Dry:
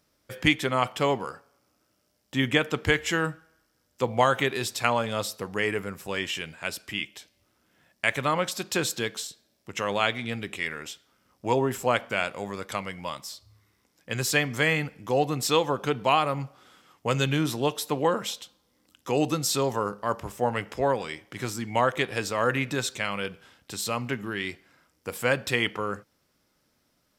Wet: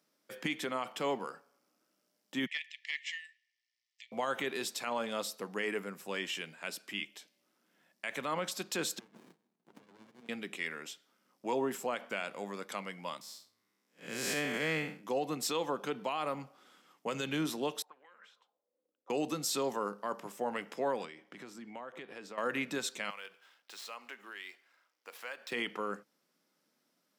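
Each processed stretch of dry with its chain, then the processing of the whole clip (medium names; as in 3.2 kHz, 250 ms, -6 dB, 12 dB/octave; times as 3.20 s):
2.46–4.12 s: brick-wall FIR high-pass 1.7 kHz + distance through air 130 m + loudspeaker Doppler distortion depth 0.17 ms
8.99–10.29 s: compression 16:1, threshold -38 dBFS + sliding maximum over 65 samples
13.21–15.04 s: spectral blur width 164 ms + waveshaping leveller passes 1
17.82–19.10 s: de-hum 56.24 Hz, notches 12 + compression 2.5:1, threshold -32 dBFS + auto-wah 470–2200 Hz, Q 5.5, up, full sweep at -29 dBFS
21.05–22.38 s: compression 4:1, threshold -36 dBFS + low-pass 2.8 kHz 6 dB/octave
23.10–25.52 s: median filter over 5 samples + Bessel high-pass 880 Hz + compression 2:1, threshold -38 dBFS
whole clip: steep high-pass 170 Hz 36 dB/octave; peak limiter -17 dBFS; trim -6.5 dB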